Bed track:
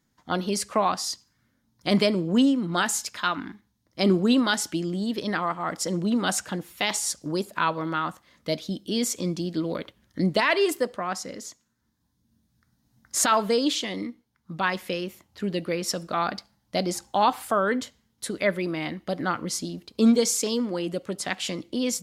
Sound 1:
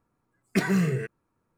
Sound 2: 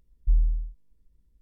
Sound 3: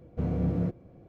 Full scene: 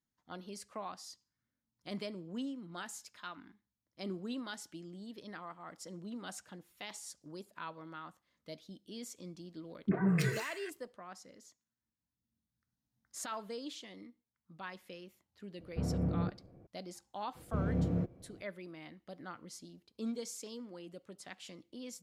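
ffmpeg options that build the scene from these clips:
-filter_complex "[3:a]asplit=2[a][b];[0:a]volume=-20dB[c];[1:a]acrossover=split=330|1400[d][e][f];[e]adelay=40[g];[f]adelay=310[h];[d][g][h]amix=inputs=3:normalize=0[i];[a]lowpass=2.3k[j];[i]atrim=end=1.57,asetpts=PTS-STARTPTS,volume=-5dB,afade=t=in:d=0.004:c=hsin,afade=t=out:st=1.566:d=0.004:c=hsin,adelay=9320[k];[j]atrim=end=1.08,asetpts=PTS-STARTPTS,volume=-5.5dB,afade=t=in:d=0.004:c=hsin,afade=t=out:st=1.076:d=0.004:c=hsin,adelay=15590[l];[b]atrim=end=1.08,asetpts=PTS-STARTPTS,volume=-4.5dB,afade=t=in:d=0.004:c=hsin,afade=t=out:st=1.076:d=0.004:c=hsin,adelay=17350[m];[c][k][l][m]amix=inputs=4:normalize=0"

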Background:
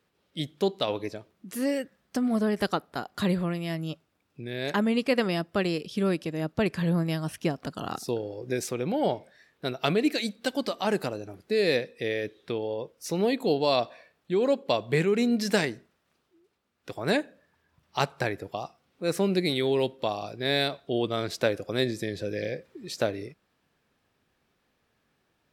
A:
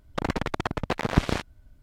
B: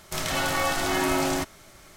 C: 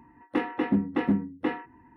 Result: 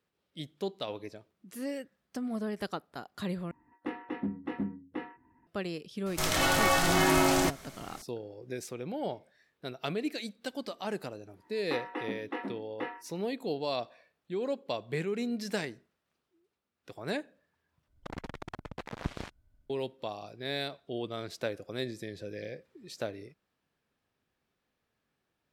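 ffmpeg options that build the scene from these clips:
-filter_complex "[3:a]asplit=2[a][b];[0:a]volume=-9dB[c];[b]highpass=450[d];[c]asplit=3[e][f][g];[e]atrim=end=3.514[h];[a]atrim=end=1.96,asetpts=PTS-STARTPTS,volume=-10dB[i];[f]atrim=start=5.466:end=17.884[j];[1:a]atrim=end=1.82,asetpts=PTS-STARTPTS,volume=-14dB[k];[g]atrim=start=19.696[l];[2:a]atrim=end=1.96,asetpts=PTS-STARTPTS,afade=t=in:d=0.004:c=hsin,afade=t=out:st=1.956:d=0.004:c=hsin,adelay=6060[m];[d]atrim=end=1.96,asetpts=PTS-STARTPTS,volume=-5dB,afade=t=in:d=0.1,afade=t=out:st=1.86:d=0.1,adelay=11360[n];[h][i]acrossfade=d=0.004:c1=hsin:c2=hsin[o];[o][j]acrossfade=d=0.004:c1=hsin:c2=hsin[p];[p][k]acrossfade=d=0.004:c1=hsin:c2=hsin[q];[q][l]acrossfade=d=0.004:c1=hsin:c2=hsin[r];[r][m][n]amix=inputs=3:normalize=0"

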